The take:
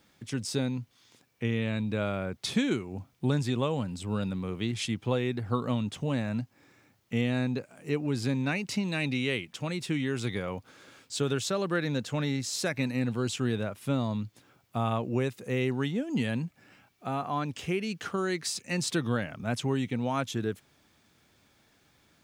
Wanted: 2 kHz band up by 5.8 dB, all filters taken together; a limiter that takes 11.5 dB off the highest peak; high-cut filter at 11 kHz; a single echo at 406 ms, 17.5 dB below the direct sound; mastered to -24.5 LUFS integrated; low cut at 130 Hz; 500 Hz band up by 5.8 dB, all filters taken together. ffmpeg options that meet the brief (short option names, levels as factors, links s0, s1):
-af "highpass=130,lowpass=11000,equalizer=f=500:t=o:g=7,equalizer=f=2000:t=o:g=7,alimiter=limit=0.0794:level=0:latency=1,aecho=1:1:406:0.133,volume=2.51"